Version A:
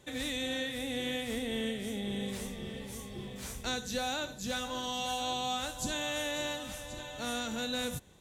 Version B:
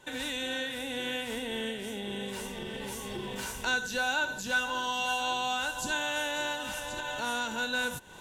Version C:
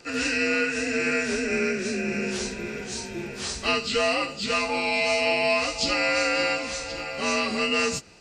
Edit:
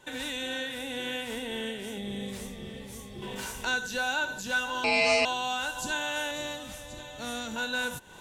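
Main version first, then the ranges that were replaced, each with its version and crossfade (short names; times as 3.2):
B
1.98–3.22 from A
4.84–5.25 from C
6.31–7.56 from A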